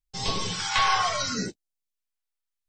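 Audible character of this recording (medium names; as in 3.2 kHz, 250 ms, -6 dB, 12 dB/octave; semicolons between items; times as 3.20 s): phasing stages 2, 0.76 Hz, lowest notch 210–1500 Hz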